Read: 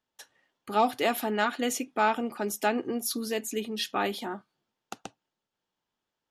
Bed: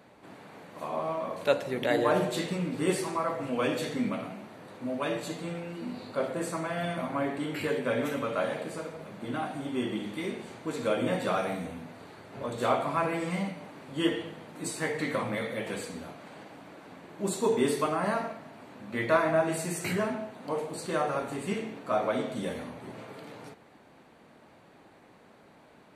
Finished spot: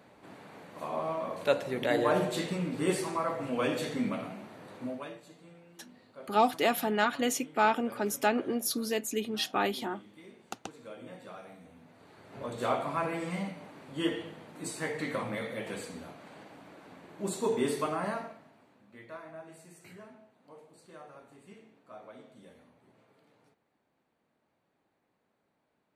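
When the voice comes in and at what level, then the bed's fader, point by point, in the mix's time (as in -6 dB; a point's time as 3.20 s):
5.60 s, -0.5 dB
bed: 4.84 s -1.5 dB
5.21 s -18 dB
11.59 s -18 dB
12.34 s -3.5 dB
18.00 s -3.5 dB
19.05 s -21 dB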